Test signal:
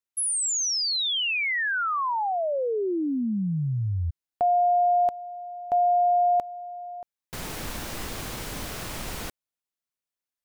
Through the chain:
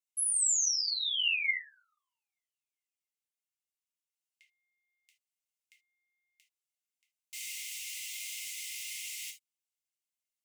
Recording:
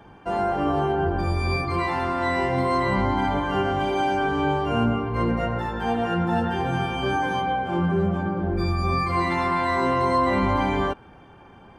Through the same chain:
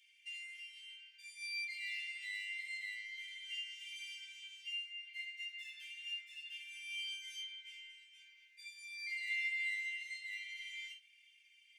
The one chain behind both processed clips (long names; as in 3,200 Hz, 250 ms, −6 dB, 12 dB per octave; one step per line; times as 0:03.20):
downward compressor, threshold −27 dBFS
Chebyshev high-pass with heavy ripple 2,000 Hz, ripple 6 dB
reverb whose tail is shaped and stops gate 100 ms falling, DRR −1.5 dB
level −2.5 dB